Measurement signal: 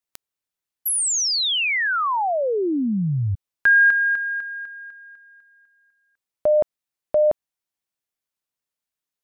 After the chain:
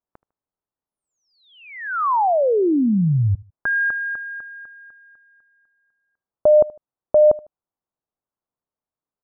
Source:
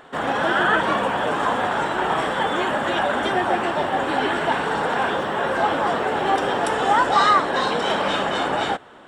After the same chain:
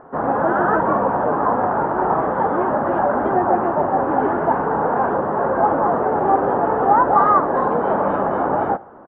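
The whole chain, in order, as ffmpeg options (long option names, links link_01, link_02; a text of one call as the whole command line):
ffmpeg -i in.wav -filter_complex "[0:a]lowpass=frequency=1200:width=0.5412,lowpass=frequency=1200:width=1.3066,asplit=2[link_01][link_02];[link_02]aecho=0:1:76|152:0.075|0.0262[link_03];[link_01][link_03]amix=inputs=2:normalize=0,volume=4.5dB" out.wav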